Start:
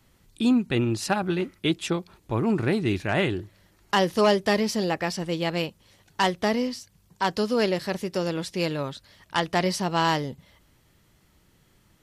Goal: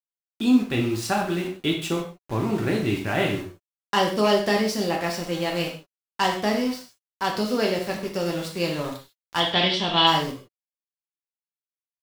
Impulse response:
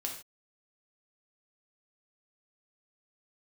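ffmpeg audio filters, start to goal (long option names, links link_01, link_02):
-filter_complex "[0:a]aeval=exprs='val(0)*gte(abs(val(0)),0.0188)':channel_layout=same,asettb=1/sr,asplit=3[link_01][link_02][link_03];[link_01]atrim=end=9.404[link_04];[link_02]atrim=start=9.4:end=10.07,asetpts=PTS-STARTPTS,afade=type=in:duration=0.004:curve=qsin,afade=type=out:start_time=0.666:duration=0.004:curve=qsin,lowpass=frequency=3400:width_type=q:width=13[link_05];[link_03]atrim=start=10.066[link_06];[link_04][link_05]acrossfade=duration=0.004:curve1=hsin:curve2=qsin[link_07];[link_07][link_06]acrossfade=duration=0.004:curve1=qsin:curve2=hsin[link_08];[1:a]atrim=start_sample=2205[link_09];[link_08][link_09]afir=irnorm=-1:irlink=0"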